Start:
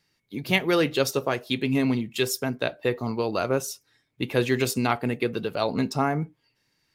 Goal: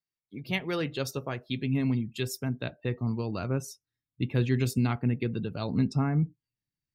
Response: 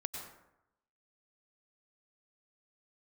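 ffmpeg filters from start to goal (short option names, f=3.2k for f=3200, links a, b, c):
-af "afftdn=nr=19:nf=-43,asubboost=boost=6.5:cutoff=220,volume=-8.5dB"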